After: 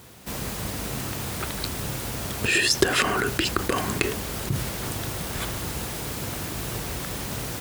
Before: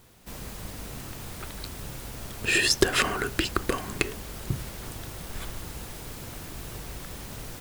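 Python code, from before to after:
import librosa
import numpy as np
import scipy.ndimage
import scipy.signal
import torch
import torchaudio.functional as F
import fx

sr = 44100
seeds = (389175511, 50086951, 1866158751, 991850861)

p1 = fx.over_compress(x, sr, threshold_db=-32.0, ratio=-0.5)
p2 = x + (p1 * 10.0 ** (0.5 / 20.0))
p3 = scipy.signal.sosfilt(scipy.signal.butter(2, 67.0, 'highpass', fs=sr, output='sos'), p2)
y = p3 * 10.0 ** (1.0 / 20.0)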